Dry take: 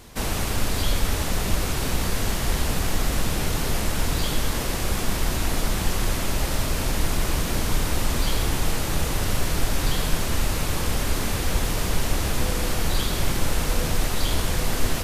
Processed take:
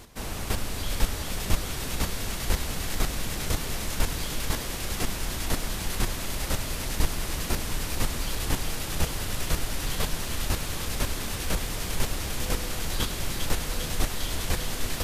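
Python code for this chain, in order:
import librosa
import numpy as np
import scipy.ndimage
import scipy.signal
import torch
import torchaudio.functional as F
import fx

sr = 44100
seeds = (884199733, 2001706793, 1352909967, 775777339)

p1 = fx.chopper(x, sr, hz=2.0, depth_pct=60, duty_pct=10)
y = p1 + fx.echo_wet_highpass(p1, sr, ms=400, feedback_pct=80, hz=1800.0, wet_db=-4.5, dry=0)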